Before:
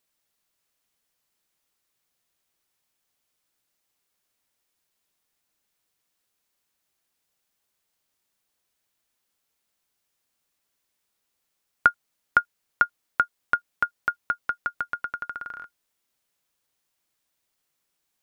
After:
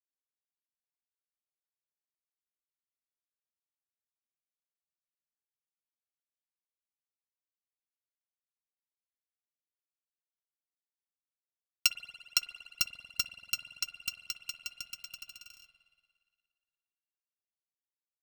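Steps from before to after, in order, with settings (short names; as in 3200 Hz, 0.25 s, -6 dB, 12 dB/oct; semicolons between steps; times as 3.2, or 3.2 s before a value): FFT order left unsorted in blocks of 128 samples; spring tank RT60 2.8 s, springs 47 ms, chirp 25 ms, DRR 2 dB; power-law curve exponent 1.4; gain -6.5 dB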